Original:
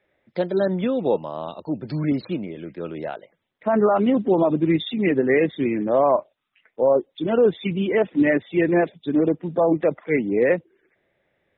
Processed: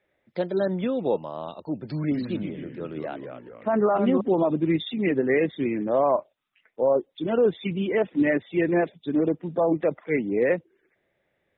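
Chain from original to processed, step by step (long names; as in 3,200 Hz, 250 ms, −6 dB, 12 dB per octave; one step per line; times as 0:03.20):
0:02.05–0:04.21: delay with pitch and tempo change per echo 93 ms, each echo −2 semitones, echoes 3, each echo −6 dB
level −3.5 dB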